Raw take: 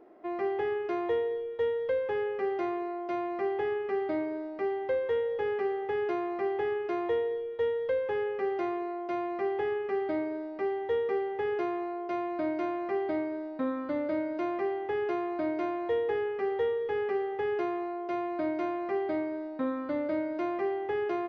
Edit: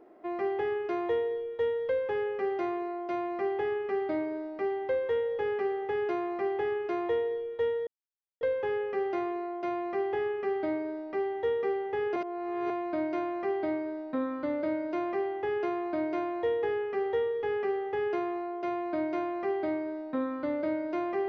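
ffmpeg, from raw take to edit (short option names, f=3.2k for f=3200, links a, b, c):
-filter_complex "[0:a]asplit=4[a][b][c][d];[a]atrim=end=7.87,asetpts=PTS-STARTPTS,afade=t=out:st=7.866:d=0.004:c=hsin,apad=pad_dur=0.54[e];[b]atrim=start=7.87:end=11.622,asetpts=PTS-STARTPTS,afade=t=in:d=0.004:c=hsin[f];[c]atrim=start=11.618:end=12.162,asetpts=PTS-STARTPTS,areverse[g];[d]atrim=start=12.158[h];[e][f]concat=n=2:v=0:a=1[i];[i][g]acrossfade=d=0.004:c1=hsin:c2=hsin[j];[j][h]acrossfade=d=0.004:c1=hsin:c2=hsin"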